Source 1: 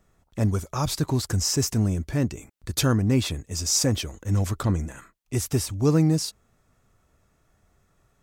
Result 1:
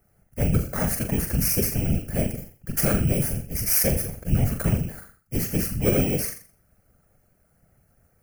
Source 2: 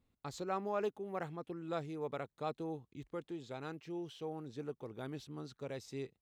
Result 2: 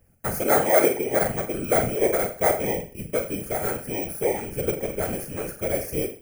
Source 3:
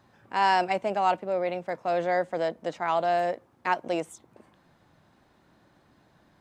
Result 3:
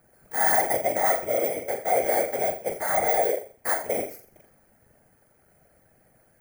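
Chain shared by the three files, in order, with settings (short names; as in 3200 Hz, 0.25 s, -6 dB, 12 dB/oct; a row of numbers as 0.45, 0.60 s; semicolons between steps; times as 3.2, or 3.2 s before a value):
FFT order left unsorted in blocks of 16 samples; fixed phaser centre 1000 Hz, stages 6; on a send: flutter echo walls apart 7.2 m, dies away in 0.41 s; on the sum: whisperiser; match loudness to -24 LUFS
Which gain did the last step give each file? +3.0, +19.0, +3.0 dB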